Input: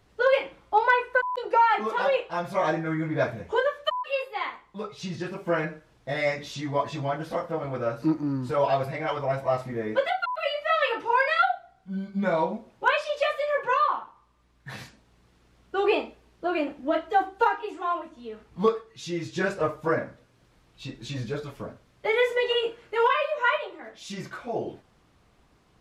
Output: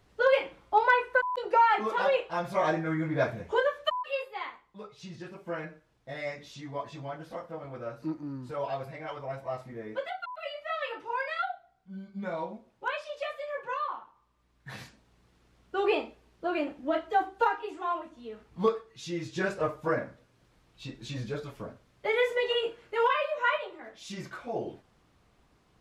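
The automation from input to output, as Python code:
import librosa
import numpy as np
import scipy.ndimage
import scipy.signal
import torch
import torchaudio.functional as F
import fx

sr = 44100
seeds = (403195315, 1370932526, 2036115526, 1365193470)

y = fx.gain(x, sr, db=fx.line((3.89, -2.0), (4.82, -10.0), (13.88, -10.0), (14.74, -3.5)))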